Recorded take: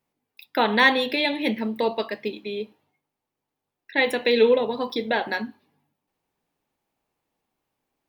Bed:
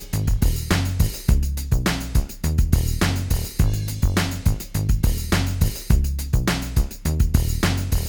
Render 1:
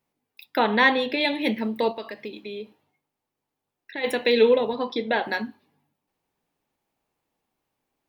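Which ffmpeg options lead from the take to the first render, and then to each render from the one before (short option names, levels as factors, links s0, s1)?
-filter_complex "[0:a]asettb=1/sr,asplit=3[s0][s1][s2];[s0]atrim=end=0.594[s3];[s1]atrim=start=0.59:end=1.21,asetpts=PTS-STARTPTS,afade=t=in:d=0.004:c=qsin,afade=t=out:st=0.616:d=0.004:c=qsin,aemphasis=mode=reproduction:type=50kf[s4];[s2]atrim=start=1.206[s5];[s3][s4]acrossfade=d=0.004:c1=hsin:c2=qsin[s6];[s6][s5]acrossfade=d=0.004:c1=qsin:c2=hsin,asplit=3[s7][s8][s9];[s7]afade=t=out:st=1.91:d=0.02[s10];[s8]acompressor=threshold=0.0224:ratio=2.5:attack=3.2:release=140:knee=1:detection=peak,afade=t=in:st=1.91:d=0.02,afade=t=out:st=4.03:d=0.02[s11];[s9]afade=t=in:st=4.03:d=0.02[s12];[s10][s11][s12]amix=inputs=3:normalize=0,asettb=1/sr,asplit=3[s13][s14][s15];[s13]atrim=end=4.734[s16];[s14]atrim=start=4.73:end=5.24,asetpts=PTS-STARTPTS,afade=t=in:d=0.004:c=qsin,afade=t=out:st=0.506:d=0.004:c=qsin,highpass=120,lowpass=4400[s17];[s15]atrim=start=5.236[s18];[s16][s17]acrossfade=d=0.004:c1=hsin:c2=qsin[s19];[s19][s18]acrossfade=d=0.004:c1=qsin:c2=hsin"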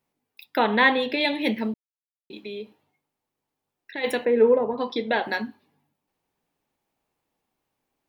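-filter_complex "[0:a]asettb=1/sr,asplit=3[s0][s1][s2];[s0]atrim=end=0.574[s3];[s1]atrim=start=0.57:end=1.03,asetpts=PTS-STARTPTS,afade=t=in:d=0.004:c=qsin,afade=t=out:st=0.456:d=0.004:c=qsin,asuperstop=centerf=5400:order=4:qfactor=2[s4];[s2]atrim=start=1.026[s5];[s3][s4]acrossfade=d=0.004:c1=hsin:c2=qsin[s6];[s6][s5]acrossfade=d=0.004:c1=qsin:c2=hsin,asettb=1/sr,asplit=3[s7][s8][s9];[s7]atrim=end=4.254[s10];[s8]atrim=start=4.25:end=4.78,asetpts=PTS-STARTPTS,afade=t=in:d=0.004:c=qsin,afade=t=out:st=0.526:d=0.004:c=qsin,lowpass=f=1600:w=0.5412,lowpass=f=1600:w=1.3066[s11];[s9]atrim=start=4.776[s12];[s10][s11]acrossfade=d=0.004:c1=hsin:c2=qsin[s13];[s13][s12]acrossfade=d=0.004:c1=qsin:c2=hsin,asplit=3[s14][s15][s16];[s14]atrim=end=1.74,asetpts=PTS-STARTPTS,afade=t=out:st=1.736:d=0.004:c=hsin[s17];[s15]atrim=start=1.74:end=2.3,asetpts=PTS-STARTPTS,volume=0[s18];[s16]atrim=start=2.3,asetpts=PTS-STARTPTS,afade=t=in:d=0.004:c=hsin[s19];[s17][s18][s19]concat=n=3:v=0:a=1"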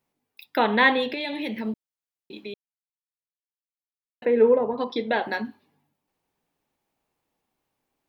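-filter_complex "[0:a]asplit=3[s0][s1][s2];[s0]afade=t=out:st=1.11:d=0.02[s3];[s1]acompressor=threshold=0.0501:ratio=6:attack=3.2:release=140:knee=1:detection=peak,afade=t=in:st=1.11:d=0.02,afade=t=out:st=1.66:d=0.02[s4];[s2]afade=t=in:st=1.66:d=0.02[s5];[s3][s4][s5]amix=inputs=3:normalize=0,asettb=1/sr,asplit=3[s6][s7][s8];[s6]atrim=end=4.844[s9];[s7]atrim=start=4.84:end=5.45,asetpts=PTS-STARTPTS,afade=t=in:d=0.004:c=qsin,afade=t=out:st=0.606:d=0.004:c=qsin,adynamicequalizer=threshold=0.0126:dfrequency=1700:dqfactor=0.7:tfrequency=1700:tqfactor=0.7:attack=5:release=100:ratio=0.375:range=3:mode=cutabove:tftype=highshelf[s10];[s8]atrim=start=5.446[s11];[s9][s10]acrossfade=d=0.004:c1=hsin:c2=qsin[s12];[s12][s11]acrossfade=d=0.004:c1=qsin:c2=hsin,asplit=3[s13][s14][s15];[s13]atrim=end=2.54,asetpts=PTS-STARTPTS,afade=t=out:st=2.536:d=0.004:c=hsin[s16];[s14]atrim=start=2.54:end=4.22,asetpts=PTS-STARTPTS,volume=0[s17];[s15]atrim=start=4.22,asetpts=PTS-STARTPTS,afade=t=in:d=0.004:c=hsin[s18];[s16][s17][s18]concat=n=3:v=0:a=1"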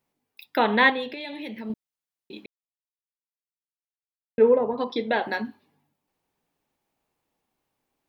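-filter_complex "[0:a]asplit=5[s0][s1][s2][s3][s4];[s0]atrim=end=0.902[s5];[s1]atrim=start=0.898:end=1.702,asetpts=PTS-STARTPTS,volume=0.531[s6];[s2]atrim=start=1.698:end=2.46,asetpts=PTS-STARTPTS,afade=t=out:st=0.758:d=0.004:c=hsin[s7];[s3]atrim=start=2.46:end=4.38,asetpts=PTS-STARTPTS,volume=0[s8];[s4]atrim=start=4.38,asetpts=PTS-STARTPTS,afade=t=in:d=0.004:c=hsin[s9];[s5][s6]acrossfade=d=0.004:c1=hsin:c2=hsin[s10];[s7][s8][s9]concat=n=3:v=0:a=1[s11];[s10][s11]acrossfade=d=0.004:c1=hsin:c2=hsin"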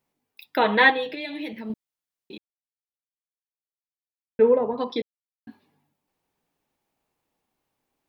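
-filter_complex "[0:a]asettb=1/sr,asplit=3[s0][s1][s2];[s0]atrim=end=0.614[s3];[s1]atrim=start=0.61:end=1.53,asetpts=PTS-STARTPTS,afade=t=in:d=0.004:c=qsin,afade=t=out:st=0.916:d=0.004:c=qsin,aecho=1:1:6.3:0.76,atrim=end_sample=40572[s4];[s2]atrim=start=1.526[s5];[s3][s4]acrossfade=d=0.004:c1=hsin:c2=qsin[s6];[s6][s5]acrossfade=d=0.004:c1=qsin:c2=hsin,asplit=5[s7][s8][s9][s10][s11];[s7]atrim=end=2.38,asetpts=PTS-STARTPTS,afade=t=out:st=2.376:d=0.004:c=hsin[s12];[s8]atrim=start=2.38:end=4.39,asetpts=PTS-STARTPTS,volume=0[s13];[s9]atrim=start=4.39:end=5.02,asetpts=PTS-STARTPTS,afade=t=in:d=0.004:c=hsin,afade=t=out:st=0.626:d=0.004:c=hsin[s14];[s10]atrim=start=5.02:end=5.47,asetpts=PTS-STARTPTS,volume=0[s15];[s11]atrim=start=5.47,asetpts=PTS-STARTPTS,afade=t=in:d=0.004:c=hsin[s16];[s12][s13][s14][s15][s16]concat=n=5:v=0:a=1"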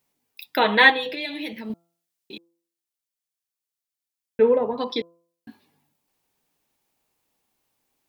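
-af "highshelf=f=2800:g=9,bandreject=f=169.5:t=h:w=4,bandreject=f=339:t=h:w=4,bandreject=f=508.5:t=h:w=4,bandreject=f=678:t=h:w=4,bandreject=f=847.5:t=h:w=4,bandreject=f=1017:t=h:w=4,bandreject=f=1186.5:t=h:w=4,bandreject=f=1356:t=h:w=4"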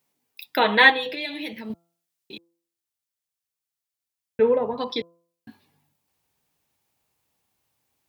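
-af "highpass=85,asubboost=boost=4:cutoff=120"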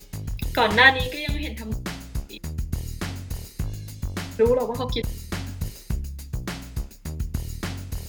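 -filter_complex "[1:a]volume=0.299[s0];[0:a][s0]amix=inputs=2:normalize=0"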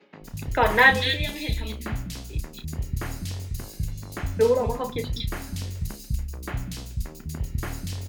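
-filter_complex "[0:a]asplit=2[s0][s1];[s1]adelay=33,volume=0.299[s2];[s0][s2]amix=inputs=2:normalize=0,acrossover=split=220|2800[s3][s4][s5];[s3]adelay=200[s6];[s5]adelay=240[s7];[s6][s4][s7]amix=inputs=3:normalize=0"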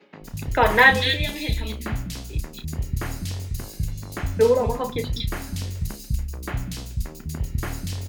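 -af "volume=1.33,alimiter=limit=0.708:level=0:latency=1"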